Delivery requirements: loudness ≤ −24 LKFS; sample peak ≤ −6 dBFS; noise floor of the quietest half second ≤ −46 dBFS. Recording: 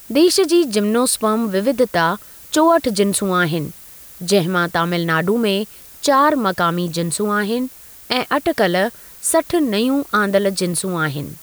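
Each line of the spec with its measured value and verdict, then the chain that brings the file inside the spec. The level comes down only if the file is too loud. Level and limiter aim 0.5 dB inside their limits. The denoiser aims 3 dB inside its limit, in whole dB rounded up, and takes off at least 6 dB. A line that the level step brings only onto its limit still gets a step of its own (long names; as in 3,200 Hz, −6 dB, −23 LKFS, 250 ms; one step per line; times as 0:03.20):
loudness −17.5 LKFS: out of spec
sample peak −4.5 dBFS: out of spec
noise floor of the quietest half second −40 dBFS: out of spec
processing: level −7 dB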